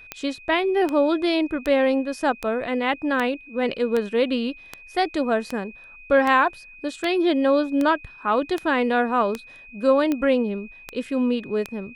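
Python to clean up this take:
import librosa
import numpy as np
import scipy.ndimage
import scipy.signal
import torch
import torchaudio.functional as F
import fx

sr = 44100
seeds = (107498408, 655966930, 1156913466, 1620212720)

y = fx.fix_declick_ar(x, sr, threshold=10.0)
y = fx.notch(y, sr, hz=2500.0, q=30.0)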